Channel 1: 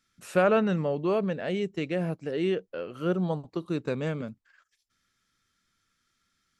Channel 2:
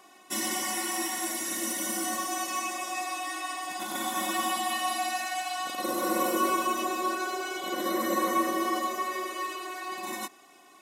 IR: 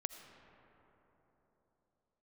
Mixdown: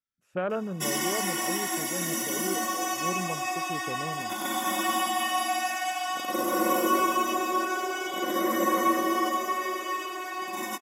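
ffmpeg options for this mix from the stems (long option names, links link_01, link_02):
-filter_complex "[0:a]afwtdn=0.0282,volume=-7.5dB[link_01];[1:a]adelay=500,volume=2.5dB[link_02];[link_01][link_02]amix=inputs=2:normalize=0,equalizer=frequency=9000:width=5.7:gain=-10.5,bandreject=frequency=4100:width=8.2"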